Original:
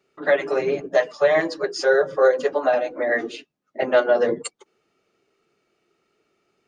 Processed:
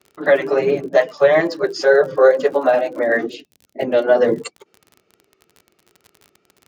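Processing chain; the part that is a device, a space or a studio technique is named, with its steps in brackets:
lo-fi chain (low-pass filter 6,200 Hz 12 dB per octave; tape wow and flutter; surface crackle 41 per second −34 dBFS)
high-pass filter 66 Hz
low-shelf EQ 370 Hz +5.5 dB
0:03.26–0:04.04: parametric band 1,200 Hz −12.5 dB 1.3 octaves
level +3 dB

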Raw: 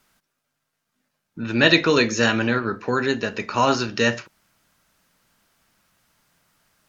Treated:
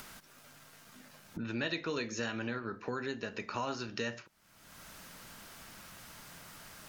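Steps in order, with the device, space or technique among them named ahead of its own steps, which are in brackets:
upward and downward compression (upward compression, threshold −35 dBFS; downward compressor 3 to 1, threshold −37 dBFS, peak gain reduction 19.5 dB)
level −2 dB

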